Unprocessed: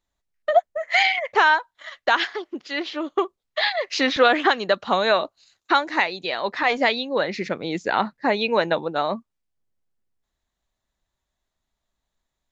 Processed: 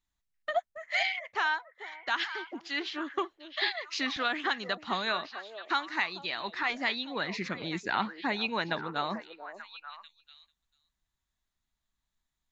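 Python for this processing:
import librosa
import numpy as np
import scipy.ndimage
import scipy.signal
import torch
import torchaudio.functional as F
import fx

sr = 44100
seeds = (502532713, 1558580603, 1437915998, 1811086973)

y = fx.peak_eq(x, sr, hz=530.0, db=-13.0, octaves=1.0)
y = fx.rider(y, sr, range_db=3, speed_s=0.5)
y = fx.echo_stepped(y, sr, ms=442, hz=510.0, octaves=1.4, feedback_pct=70, wet_db=-7.5)
y = F.gain(torch.from_numpy(y), -7.0).numpy()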